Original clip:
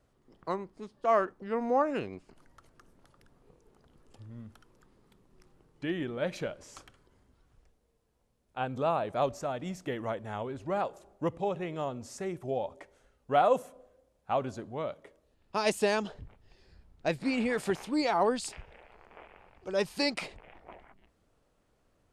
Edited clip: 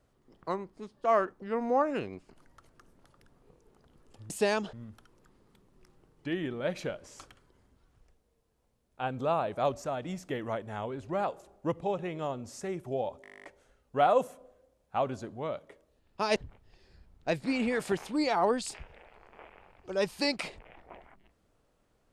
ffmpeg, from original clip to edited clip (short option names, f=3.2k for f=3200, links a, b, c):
-filter_complex "[0:a]asplit=15[a][b][c][d][e][f][g][h][i][j][k][l][m][n][o];[a]atrim=end=4.302[p];[b]atrim=start=15.708:end=16.142[q];[c]atrim=start=4.298:end=12.812[r];[d]atrim=start=12.788:end=12.812[s];[e]atrim=start=12.788:end=12.812[t];[f]atrim=start=12.788:end=12.812[u];[g]atrim=start=12.788:end=12.812[v];[h]atrim=start=12.788:end=12.812[w];[i]atrim=start=12.788:end=12.812[x];[j]atrim=start=12.788:end=12.812[y];[k]atrim=start=12.788:end=12.812[z];[l]atrim=start=12.788:end=12.812[aa];[m]atrim=start=12.788:end=12.812[ab];[n]atrim=start=12.788:end=15.712[ac];[o]atrim=start=16.138[ad];[p][q]acrossfade=d=0.004:c1=hsin:c2=hsin[ae];[ae][r]acrossfade=d=0.004:c1=hsin:c2=hsin[af];[af][s]acrossfade=d=0.004:c1=hsin:c2=hsin[ag];[ag][t]acrossfade=d=0.004:c1=hsin:c2=hsin[ah];[ah][u]acrossfade=d=0.004:c1=hsin:c2=hsin[ai];[ai][v]acrossfade=d=0.004:c1=hsin:c2=hsin[aj];[aj][w]acrossfade=d=0.004:c1=hsin:c2=hsin[ak];[ak][x]acrossfade=d=0.004:c1=hsin:c2=hsin[al];[al][y]acrossfade=d=0.004:c1=hsin:c2=hsin[am];[am][z]acrossfade=d=0.004:c1=hsin:c2=hsin[an];[an][aa]acrossfade=d=0.004:c1=hsin:c2=hsin[ao];[ao][ab]acrossfade=d=0.004:c1=hsin:c2=hsin[ap];[ap][ac]acrossfade=d=0.004:c1=hsin:c2=hsin[aq];[aq][ad]acrossfade=d=0.004:c1=hsin:c2=hsin"